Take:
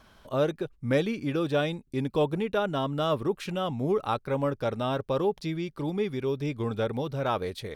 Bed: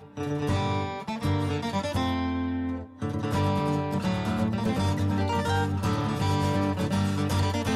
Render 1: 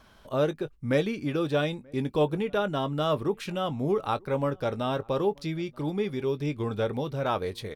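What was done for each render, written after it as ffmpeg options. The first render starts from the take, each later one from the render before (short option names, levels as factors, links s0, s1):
-filter_complex "[0:a]asplit=2[s0][s1];[s1]adelay=20,volume=0.2[s2];[s0][s2]amix=inputs=2:normalize=0,asplit=2[s3][s4];[s4]adelay=932.9,volume=0.0398,highshelf=f=4000:g=-21[s5];[s3][s5]amix=inputs=2:normalize=0"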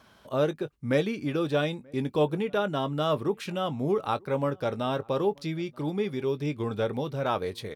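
-af "highpass=89"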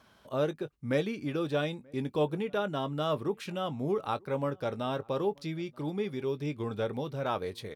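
-af "volume=0.631"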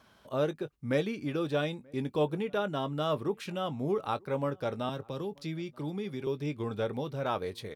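-filter_complex "[0:a]asettb=1/sr,asplit=3[s0][s1][s2];[s0]atrim=end=4.894[s3];[s1]atrim=start=4.89:end=6.27,asetpts=PTS-STARTPTS,afade=t=in:d=0.004:c=qsin,afade=t=out:st=1.376:d=0.004:c=qsin,acrossover=split=260|3000[s4][s5][s6];[s5]acompressor=threshold=0.0141:ratio=6:attack=3.2:release=140:knee=2.83:detection=peak[s7];[s4][s7][s6]amix=inputs=3:normalize=0[s8];[s2]atrim=start=6.266[s9];[s3][s8]acrossfade=d=0.004:c1=hsin:c2=qsin[s10];[s10][s9]acrossfade=d=0.004:c1=qsin:c2=hsin"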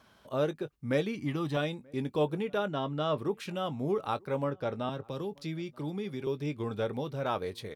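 -filter_complex "[0:a]asettb=1/sr,asplit=3[s0][s1][s2];[s0]atrim=end=1.154[s3];[s1]atrim=start=1.15:end=1.57,asetpts=PTS-STARTPTS,afade=t=in:d=0.004:c=qsin,afade=t=out:st=0.416:d=0.004:c=qsin,aecho=1:1:1:0.65,atrim=end_sample=18522[s4];[s2]atrim=start=1.566[s5];[s3][s4]acrossfade=d=0.004:c1=hsin:c2=qsin[s6];[s6][s5]acrossfade=d=0.004:c1=qsin:c2=hsin,asettb=1/sr,asplit=3[s7][s8][s9];[s7]atrim=end=2.684[s10];[s8]atrim=start=2.68:end=3.18,asetpts=PTS-STARTPTS,afade=t=in:d=0.004:c=qsin,afade=t=out:st=0.496:d=0.004:c=qsin,lowpass=5300[s11];[s9]atrim=start=3.176[s12];[s10][s11]acrossfade=d=0.004:c1=hsin:c2=qsin[s13];[s13][s12]acrossfade=d=0.004:c1=qsin:c2=hsin,asettb=1/sr,asplit=3[s14][s15][s16];[s14]atrim=end=4.444[s17];[s15]atrim=start=4.44:end=5.04,asetpts=PTS-STARTPTS,afade=t=in:d=0.004:c=qsin,afade=t=out:st=0.596:d=0.004:c=qsin,highshelf=f=6400:g=-11[s18];[s16]atrim=start=5.036[s19];[s17][s18]acrossfade=d=0.004:c1=hsin:c2=qsin[s20];[s20][s19]acrossfade=d=0.004:c1=qsin:c2=hsin"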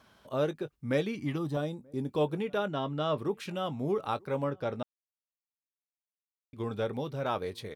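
-filter_complex "[0:a]asettb=1/sr,asplit=3[s0][s1][s2];[s0]atrim=end=1.384[s3];[s1]atrim=start=1.38:end=2.09,asetpts=PTS-STARTPTS,afade=t=in:d=0.004:c=qsin,afade=t=out:st=0.706:d=0.004:c=qsin,equalizer=f=2400:t=o:w=1.6:g=-13[s4];[s2]atrim=start=2.086[s5];[s3][s4]acrossfade=d=0.004:c1=hsin:c2=qsin[s6];[s6][s5]acrossfade=d=0.004:c1=qsin:c2=hsin,asplit=3[s7][s8][s9];[s7]atrim=end=4.83,asetpts=PTS-STARTPTS,afade=t=out:st=4.826:d=0.004:c=hsin[s10];[s8]atrim=start=4.83:end=6.53,asetpts=PTS-STARTPTS,volume=0[s11];[s9]atrim=start=6.53,asetpts=PTS-STARTPTS,afade=t=in:d=0.004:c=hsin[s12];[s10][s11][s12]concat=n=3:v=0:a=1"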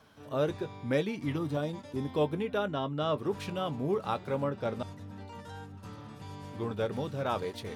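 -filter_complex "[1:a]volume=0.112[s0];[0:a][s0]amix=inputs=2:normalize=0"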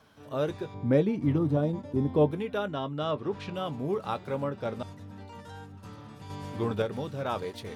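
-filter_complex "[0:a]asettb=1/sr,asplit=3[s0][s1][s2];[s0]atrim=end=0.744[s3];[s1]atrim=start=0.74:end=2.31,asetpts=PTS-STARTPTS,afade=t=in:d=0.004:c=qsin,afade=t=out:st=1.566:d=0.004:c=qsin,tiltshelf=f=1100:g=8[s4];[s2]atrim=start=2.306[s5];[s3][s4]acrossfade=d=0.004:c1=hsin:c2=qsin[s6];[s6][s5]acrossfade=d=0.004:c1=qsin:c2=hsin,asettb=1/sr,asplit=3[s7][s8][s9];[s7]atrim=end=3.114[s10];[s8]atrim=start=3.11:end=3.54,asetpts=PTS-STARTPTS,afade=t=in:d=0.004:c=qsin,afade=t=out:st=0.426:d=0.004:c=qsin,lowpass=4800[s11];[s9]atrim=start=3.536[s12];[s10][s11]acrossfade=d=0.004:c1=hsin:c2=qsin[s13];[s13][s12]acrossfade=d=0.004:c1=qsin:c2=hsin,asplit=3[s14][s15][s16];[s14]atrim=end=6.302[s17];[s15]atrim=start=6.298:end=6.822,asetpts=PTS-STARTPTS,volume=1.78[s18];[s16]atrim=start=6.818[s19];[s17][s18]acrossfade=d=0.004:c1=hsin:c2=hsin[s20];[s20][s19]acrossfade=d=0.004:c1=hsin:c2=hsin"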